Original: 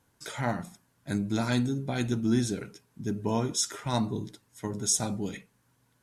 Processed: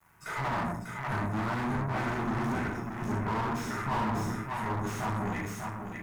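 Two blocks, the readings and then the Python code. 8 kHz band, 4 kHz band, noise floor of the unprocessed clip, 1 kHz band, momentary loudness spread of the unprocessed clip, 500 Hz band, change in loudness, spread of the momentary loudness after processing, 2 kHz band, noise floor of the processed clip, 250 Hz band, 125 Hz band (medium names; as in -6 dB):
-16.0 dB, -9.5 dB, -70 dBFS, +6.0 dB, 14 LU, -2.5 dB, -2.5 dB, 5 LU, +5.0 dB, -42 dBFS, -3.5 dB, -0.5 dB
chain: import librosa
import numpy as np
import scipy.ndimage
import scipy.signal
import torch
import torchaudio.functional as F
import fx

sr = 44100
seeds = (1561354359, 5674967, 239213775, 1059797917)

p1 = fx.notch(x, sr, hz=3200.0, q=14.0)
p2 = fx.notch_comb(p1, sr, f0_hz=270.0)
p3 = fx.room_shoebox(p2, sr, seeds[0], volume_m3=940.0, walls='furnished', distance_m=6.5)
p4 = fx.dynamic_eq(p3, sr, hz=1000.0, q=0.71, threshold_db=-35.0, ratio=4.0, max_db=4)
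p5 = fx.quant_dither(p4, sr, seeds[1], bits=10, dither='none')
p6 = fx.tube_stage(p5, sr, drive_db=28.0, bias=0.6)
p7 = fx.graphic_eq(p6, sr, hz=(125, 500, 1000, 2000, 4000, 8000), db=(-4, -7, 8, 7, -12, -4))
p8 = p7 + fx.echo_single(p7, sr, ms=595, db=-6.5, dry=0)
y = fx.slew_limit(p8, sr, full_power_hz=41.0)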